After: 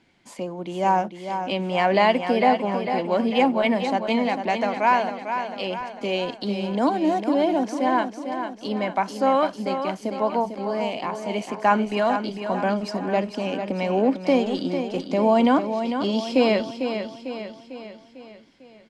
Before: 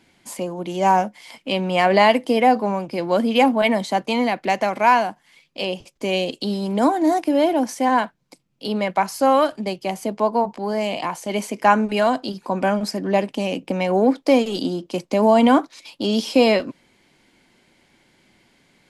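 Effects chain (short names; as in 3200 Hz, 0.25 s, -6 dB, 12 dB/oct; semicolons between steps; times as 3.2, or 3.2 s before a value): air absorption 74 m; on a send: feedback echo 0.449 s, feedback 52%, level -8 dB; on the sum: gain -3.5 dB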